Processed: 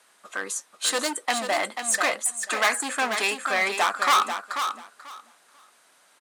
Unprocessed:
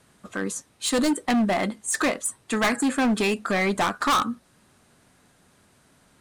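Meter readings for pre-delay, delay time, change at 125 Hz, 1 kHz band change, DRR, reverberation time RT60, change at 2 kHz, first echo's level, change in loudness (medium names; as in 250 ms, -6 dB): no reverb, 489 ms, under -15 dB, +2.0 dB, no reverb, no reverb, +3.0 dB, -7.5 dB, 0.0 dB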